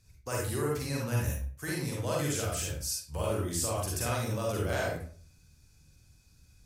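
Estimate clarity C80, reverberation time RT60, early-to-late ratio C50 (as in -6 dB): 6.5 dB, 0.45 s, 0.0 dB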